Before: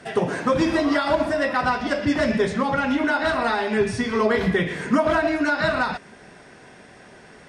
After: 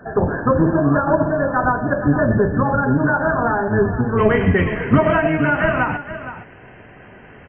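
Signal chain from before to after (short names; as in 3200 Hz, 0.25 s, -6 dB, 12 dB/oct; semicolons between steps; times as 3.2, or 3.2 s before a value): octaver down 1 oct, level 0 dB; brick-wall FIR low-pass 1800 Hz, from 4.17 s 3200 Hz; echo 0.467 s -12.5 dB; gain +3.5 dB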